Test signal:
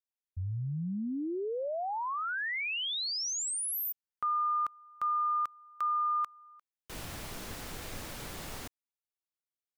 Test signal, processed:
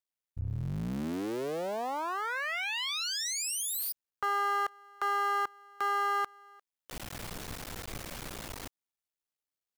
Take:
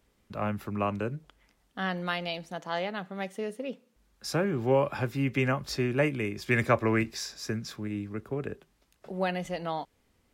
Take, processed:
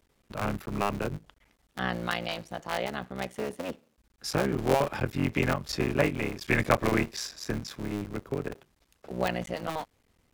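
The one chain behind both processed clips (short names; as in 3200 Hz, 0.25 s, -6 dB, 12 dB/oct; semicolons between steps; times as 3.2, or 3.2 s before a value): cycle switcher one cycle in 3, muted; gain +2 dB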